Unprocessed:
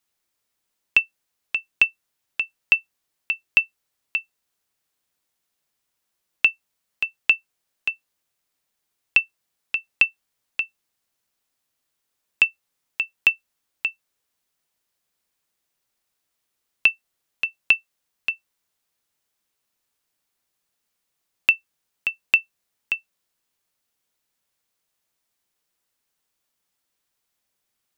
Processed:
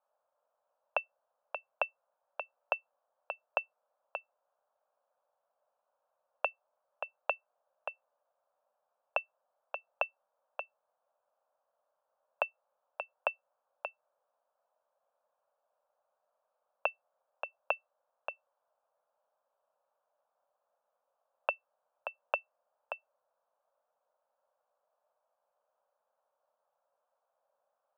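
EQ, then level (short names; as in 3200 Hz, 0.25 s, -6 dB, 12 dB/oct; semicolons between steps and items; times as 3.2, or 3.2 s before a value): resonant high-pass 570 Hz, resonance Q 4.9; LPF 1800 Hz 24 dB/oct; fixed phaser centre 840 Hz, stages 4; +4.0 dB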